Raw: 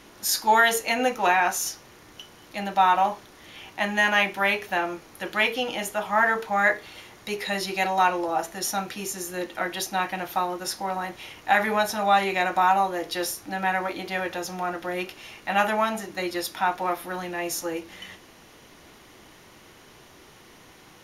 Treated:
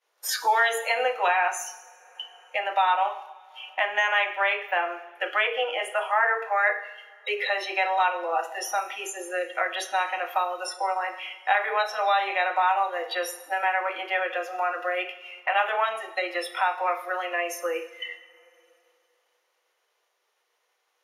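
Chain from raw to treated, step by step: elliptic high-pass 460 Hz, stop band 80 dB; expander -39 dBFS; spectral noise reduction 21 dB; two-slope reverb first 0.7 s, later 2.6 s, from -26 dB, DRR 9.5 dB; three bands compressed up and down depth 70%

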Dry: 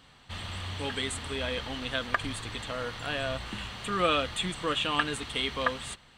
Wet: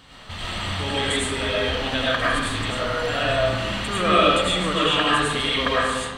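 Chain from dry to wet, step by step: in parallel at +2 dB: compression, threshold -43 dBFS, peak gain reduction 20.5 dB; on the sum: algorithmic reverb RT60 1.2 s, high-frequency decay 0.55×, pre-delay 60 ms, DRR -7.5 dB

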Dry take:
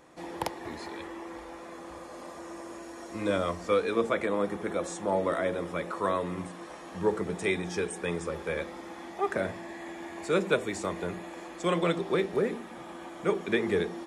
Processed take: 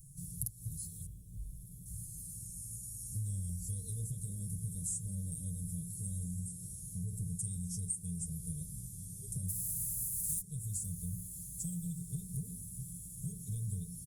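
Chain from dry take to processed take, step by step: 9.48–10.40 s: spectral contrast reduction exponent 0.36; elliptic band-stop 120–9700 Hz, stop band 80 dB; 1.06–1.86 s: high-order bell 7.3 kHz -14 dB; comb 6.8 ms, depth 89%; dynamic bell 140 Hz, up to -3 dB, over -56 dBFS, Q 0.82; compression 16:1, threshold -50 dBFS, peak gain reduction 20 dB; static phaser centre 780 Hz, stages 4; on a send: echo that smears into a reverb 1420 ms, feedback 49%, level -13.5 dB; on the sum: trim +17 dB; Opus 48 kbps 48 kHz

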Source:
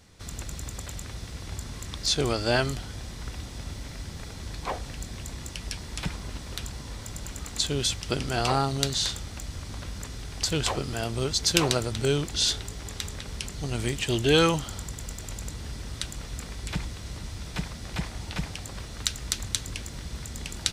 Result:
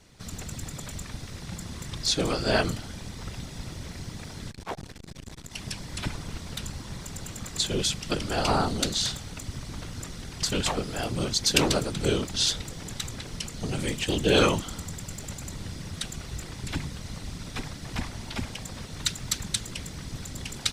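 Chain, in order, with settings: whisper effect; 4.50–5.54 s: transformer saturation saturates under 450 Hz

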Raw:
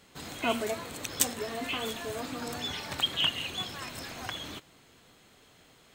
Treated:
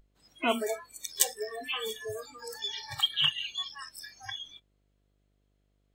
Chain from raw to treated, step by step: mains buzz 50 Hz, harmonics 14, -46 dBFS -6 dB/octave; spectral noise reduction 28 dB; trim +1.5 dB

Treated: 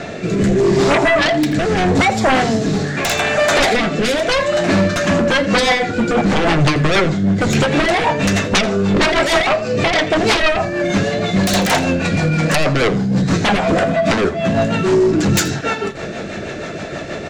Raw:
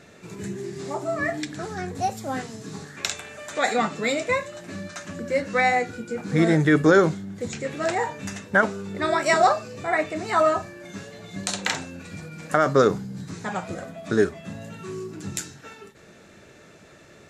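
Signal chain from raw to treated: low-pass 5.3 kHz 12 dB/octave; peaking EQ 690 Hz +6.5 dB 0.47 oct; compression 4:1, threshold -28 dBFS, peak gain reduction 16.5 dB; sine folder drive 20 dB, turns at -10 dBFS; rotary cabinet horn 0.8 Hz, later 6.3 Hz, at 4.63 s; delay 83 ms -17 dB; on a send at -14 dB: reverberation RT60 0.25 s, pre-delay 3 ms; on the sum: trim +1 dB

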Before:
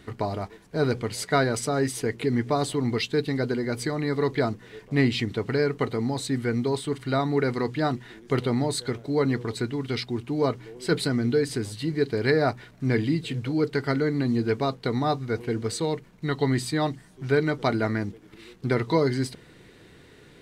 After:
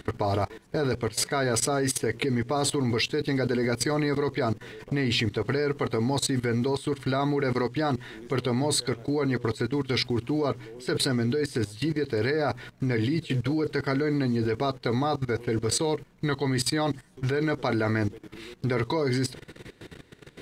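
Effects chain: dynamic bell 190 Hz, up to -6 dB, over -42 dBFS, Q 1.9; level held to a coarse grid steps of 17 dB; trim +9 dB

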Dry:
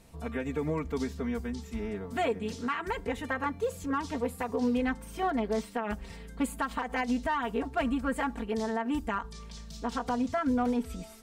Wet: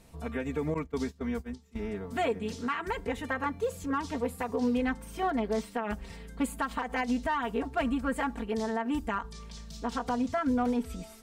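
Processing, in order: 0.74–1.79 s: gate -33 dBFS, range -18 dB

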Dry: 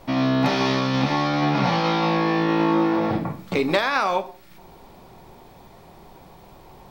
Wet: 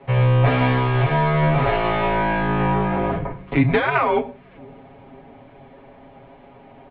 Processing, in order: tracing distortion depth 0.063 ms; bass shelf 120 Hz +8.5 dB; comb 7.3 ms, depth 94%; bucket-brigade echo 507 ms, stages 2048, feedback 60%, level -24 dB; mistuned SSB -140 Hz 210–3100 Hz

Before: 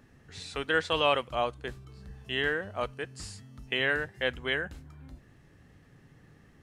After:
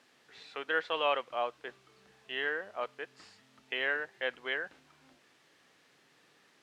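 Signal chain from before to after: added noise blue -50 dBFS; band-pass 430–3000 Hz; trim -3 dB

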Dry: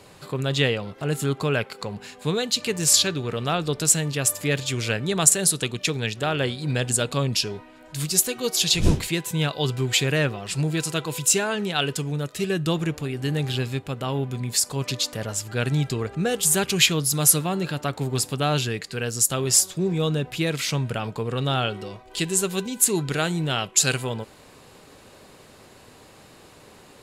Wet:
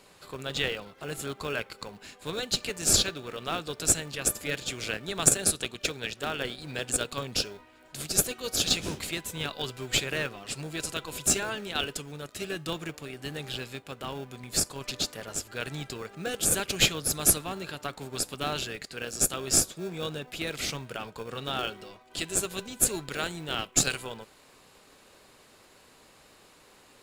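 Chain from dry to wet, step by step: high-pass 720 Hz 6 dB/octave; in parallel at -8 dB: sample-rate reducer 1 kHz, jitter 0%; on the sum: trim -5 dB

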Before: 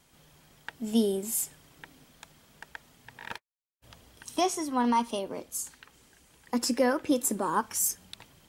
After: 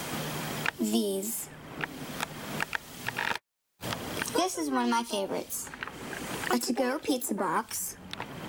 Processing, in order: harmony voices +7 st -10 dB; three bands compressed up and down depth 100%

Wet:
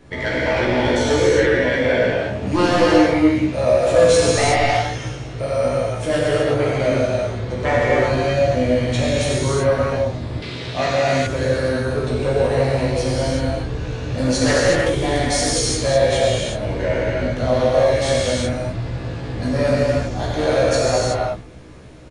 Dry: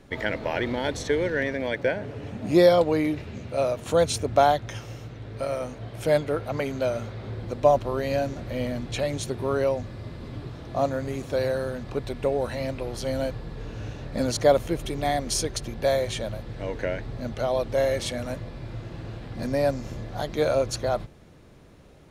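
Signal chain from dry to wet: sine folder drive 10 dB, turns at -5.5 dBFS; doubling 16 ms -4 dB; gated-style reverb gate 400 ms flat, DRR -7 dB; resampled via 22.05 kHz; 10.42–11.27 s: frequency weighting D; 14.49–15.53 s: loudspeaker Doppler distortion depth 0.15 ms; trim -12.5 dB

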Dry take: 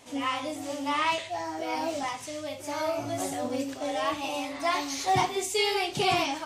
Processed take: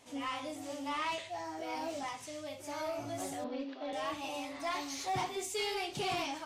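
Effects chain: 3.44–3.93 s: elliptic band-pass 230–4100 Hz, stop band 40 dB; saturation -22 dBFS, distortion -15 dB; trim -7 dB

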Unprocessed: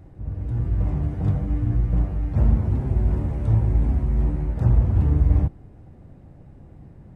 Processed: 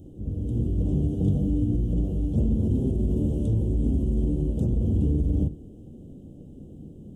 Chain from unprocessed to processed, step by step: peak limiter -16 dBFS, peak gain reduction 8.5 dB; FFT filter 130 Hz 0 dB, 230 Hz +11 dB, 330 Hz +8 dB, 470 Hz +7 dB, 980 Hz -16 dB, 1.4 kHz -19 dB, 2.1 kHz -28 dB, 3.1 kHz +9 dB, 4.4 kHz -5 dB, 6.6 kHz +9 dB; on a send: reverberation RT60 0.40 s, pre-delay 8 ms, DRR 15 dB; on the sum: trim -2 dB

